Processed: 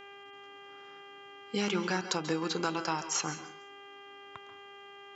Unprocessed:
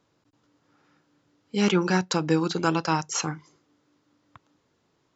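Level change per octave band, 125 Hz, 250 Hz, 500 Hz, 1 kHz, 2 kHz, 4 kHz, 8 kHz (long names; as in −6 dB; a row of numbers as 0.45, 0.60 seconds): −12.0 dB, −10.0 dB, −7.5 dB, −6.5 dB, −5.0 dB, −3.5 dB, can't be measured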